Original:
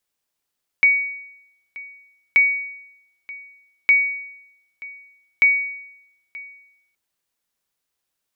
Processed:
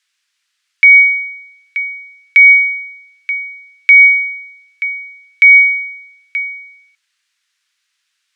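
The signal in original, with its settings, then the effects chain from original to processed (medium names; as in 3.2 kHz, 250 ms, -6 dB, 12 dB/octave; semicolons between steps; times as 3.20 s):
sonar ping 2.25 kHz, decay 0.84 s, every 1.53 s, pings 4, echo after 0.93 s, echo -21 dB -8 dBFS
high-pass 1.5 kHz 24 dB/octave; distance through air 85 m; loudness maximiser +18.5 dB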